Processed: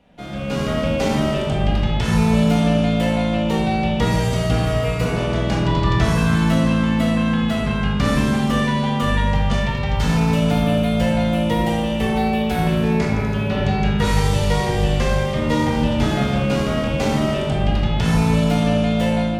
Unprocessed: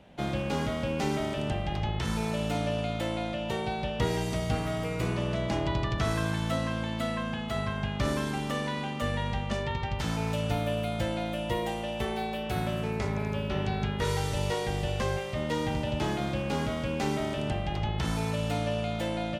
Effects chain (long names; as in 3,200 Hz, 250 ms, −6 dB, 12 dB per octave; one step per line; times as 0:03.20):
automatic gain control gain up to 10 dB
0:09.33–0:12.10: surface crackle 64 per second −34 dBFS
rectangular room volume 590 cubic metres, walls mixed, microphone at 1.8 metres
level −4 dB